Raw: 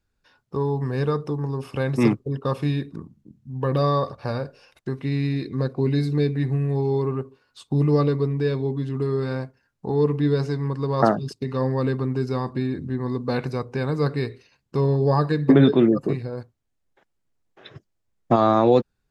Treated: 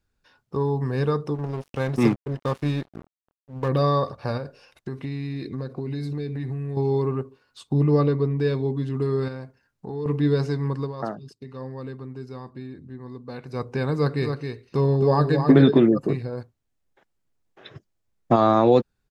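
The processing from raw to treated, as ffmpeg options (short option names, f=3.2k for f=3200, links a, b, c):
-filter_complex "[0:a]asplit=3[a][b][c];[a]afade=t=out:st=1.34:d=0.02[d];[b]aeval=exprs='sgn(val(0))*max(abs(val(0))-0.0168,0)':c=same,afade=t=in:st=1.34:d=0.02,afade=t=out:st=3.68:d=0.02[e];[c]afade=t=in:st=3.68:d=0.02[f];[d][e][f]amix=inputs=3:normalize=0,asettb=1/sr,asplit=3[g][h][i];[g]atrim=end=4.374[j];[h]atrim=start=4.37:end=6.77,asetpts=PTS-STARTPTS,afade=t=in:d=0.004:c=qsin,afade=t=out:st=2.396:d=0.004:c=qsin,acompressor=threshold=-26dB:ratio=6:attack=3.2:release=140:knee=1:detection=peak[k];[i]atrim=start=6.766[l];[j][k]acrossfade=d=0.004:c1=hsin:c2=qsin[m];[m][l]acrossfade=d=0.004:c1=qsin:c2=hsin,asettb=1/sr,asplit=3[n][o][p];[n]atrim=end=7.734[q];[o]atrim=start=7.73:end=8.39,asetpts=PTS-STARTPTS,afade=t=in:d=0.004:c=qsin,afade=t=out:st=0.656:d=0.004:c=qsin,highshelf=f=4.6k:g=-9[r];[p]atrim=start=8.386[s];[q][r]acrossfade=d=0.004:c1=hsin:c2=qsin[t];[t][s]acrossfade=d=0.004:c1=qsin:c2=hsin,asettb=1/sr,asplit=3[u][v][w];[u]atrim=end=9.284[x];[v]atrim=start=9.28:end=10.06,asetpts=PTS-STARTPTS,afade=t=in:d=0.004:c=qsin,afade=t=out:st=0.776:d=0.004:c=qsin,acompressor=threshold=-35dB:ratio=2:attack=3.2:release=140:knee=1:detection=peak[y];[w]atrim=start=10.056[z];[x][y]acrossfade=d=0.004:c1=hsin:c2=qsin[aa];[aa][z]acrossfade=d=0.004:c1=qsin:c2=hsin,asplit=3[ab][ac][ad];[ab]afade=t=out:st=14.2:d=0.02[ae];[ac]aecho=1:1:267:0.501,afade=t=in:st=14.2:d=0.02,afade=t=out:st=15.78:d=0.02[af];[ad]afade=t=in:st=15.78:d=0.02[ag];[ae][af][ag]amix=inputs=3:normalize=0,asplit=3[ah][ai][aj];[ah]atrim=end=10.93,asetpts=PTS-STARTPTS,afade=t=out:st=10.79:d=0.14:silence=0.251189[ak];[ai]atrim=start=10.93:end=13.48,asetpts=PTS-STARTPTS,volume=-12dB[al];[aj]atrim=start=13.48,asetpts=PTS-STARTPTS,afade=t=in:d=0.14:silence=0.251189[am];[ak][al][am]concat=n=3:v=0:a=1"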